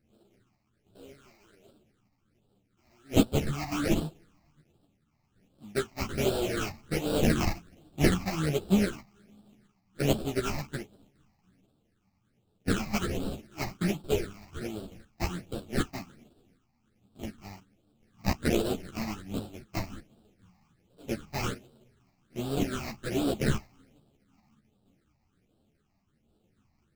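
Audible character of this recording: aliases and images of a low sample rate 1 kHz, jitter 20%; phasing stages 8, 1.3 Hz, lowest notch 430–2000 Hz; random-step tremolo; a shimmering, thickened sound

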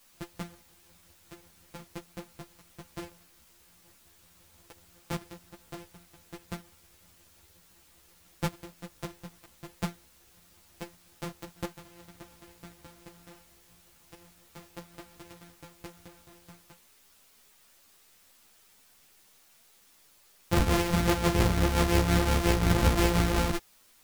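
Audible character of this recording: a buzz of ramps at a fixed pitch in blocks of 256 samples; tremolo triangle 5.7 Hz, depth 55%; a quantiser's noise floor 10-bit, dither triangular; a shimmering, thickened sound

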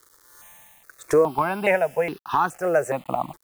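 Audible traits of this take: a quantiser's noise floor 8-bit, dither none; notches that jump at a steady rate 2.4 Hz 710–2200 Hz

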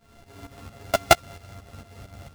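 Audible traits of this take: a buzz of ramps at a fixed pitch in blocks of 64 samples; tremolo saw up 4.4 Hz, depth 75%; aliases and images of a low sample rate 12 kHz, jitter 0%; a shimmering, thickened sound

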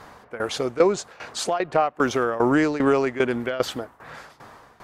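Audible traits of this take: tremolo saw down 2.5 Hz, depth 85%

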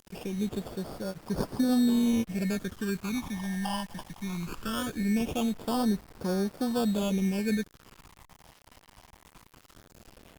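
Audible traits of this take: aliases and images of a low sample rate 2 kHz, jitter 0%; phasing stages 12, 0.2 Hz, lowest notch 410–2700 Hz; a quantiser's noise floor 8-bit, dither none; Opus

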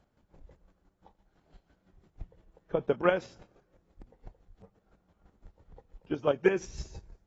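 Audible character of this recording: chopped level 5.9 Hz, depth 60%, duty 25%; AAC

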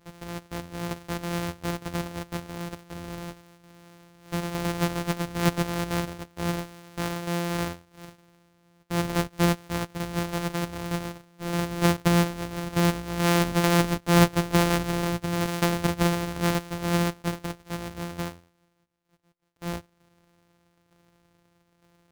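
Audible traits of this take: a buzz of ramps at a fixed pitch in blocks of 256 samples; tremolo saw down 1.1 Hz, depth 50%

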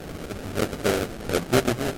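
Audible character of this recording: a quantiser's noise floor 6-bit, dither triangular; phasing stages 6, 1.5 Hz, lowest notch 480–1800 Hz; aliases and images of a low sample rate 1 kHz, jitter 20%; MP3

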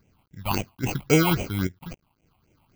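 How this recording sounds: aliases and images of a low sample rate 1.8 kHz, jitter 0%; random-step tremolo 3.6 Hz, depth 75%; a quantiser's noise floor 12-bit, dither none; phasing stages 6, 3.7 Hz, lowest notch 420–1200 Hz

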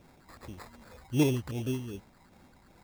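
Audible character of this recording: phasing stages 6, 2.6 Hz, lowest notch 420–4000 Hz; aliases and images of a low sample rate 3 kHz, jitter 0%

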